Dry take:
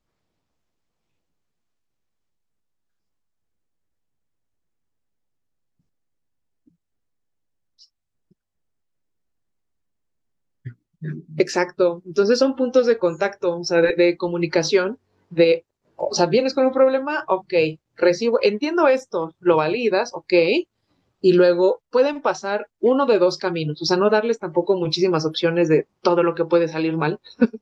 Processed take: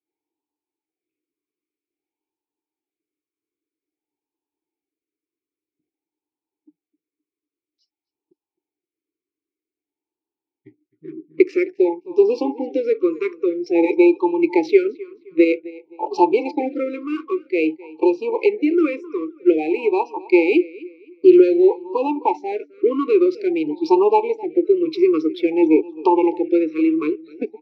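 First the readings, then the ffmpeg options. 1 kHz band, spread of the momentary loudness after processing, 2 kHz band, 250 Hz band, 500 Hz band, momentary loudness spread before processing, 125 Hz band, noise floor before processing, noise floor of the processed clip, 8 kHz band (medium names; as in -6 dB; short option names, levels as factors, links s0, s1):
+1.5 dB, 11 LU, -4.0 dB, +4.5 dB, 0.0 dB, 7 LU, under -20 dB, -77 dBFS, under -85 dBFS, no reading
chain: -filter_complex "[0:a]asplit=2[s0][s1];[s1]adynamicsmooth=sensitivity=5.5:basefreq=760,volume=0.891[s2];[s0][s2]amix=inputs=2:normalize=0,asplit=3[s3][s4][s5];[s3]bandpass=f=300:t=q:w=8,volume=1[s6];[s4]bandpass=f=870:t=q:w=8,volume=0.501[s7];[s5]bandpass=f=2240:t=q:w=8,volume=0.355[s8];[s6][s7][s8]amix=inputs=3:normalize=0,asplit=2[s9][s10];[s10]adelay=261,lowpass=f=3900:p=1,volume=0.1,asplit=2[s11][s12];[s12]adelay=261,lowpass=f=3900:p=1,volume=0.33,asplit=2[s13][s14];[s14]adelay=261,lowpass=f=3900:p=1,volume=0.33[s15];[s9][s11][s13][s15]amix=inputs=4:normalize=0,dynaudnorm=f=410:g=7:m=2.99,lowshelf=f=300:t=q:w=3:g=-11,afftfilt=real='re*(1-between(b*sr/1024,710*pow(1700/710,0.5+0.5*sin(2*PI*0.51*pts/sr))/1.41,710*pow(1700/710,0.5+0.5*sin(2*PI*0.51*pts/sr))*1.41))':imag='im*(1-between(b*sr/1024,710*pow(1700/710,0.5+0.5*sin(2*PI*0.51*pts/sr))/1.41,710*pow(1700/710,0.5+0.5*sin(2*PI*0.51*pts/sr))*1.41))':win_size=1024:overlap=0.75"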